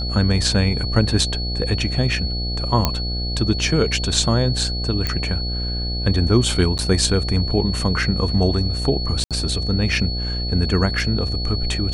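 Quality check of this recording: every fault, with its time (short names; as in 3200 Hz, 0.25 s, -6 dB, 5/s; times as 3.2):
buzz 60 Hz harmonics 13 -25 dBFS
tone 4400 Hz -27 dBFS
2.85 pop -2 dBFS
5.07 pop -8 dBFS
6.78–6.79 gap 8.8 ms
9.24–9.31 gap 67 ms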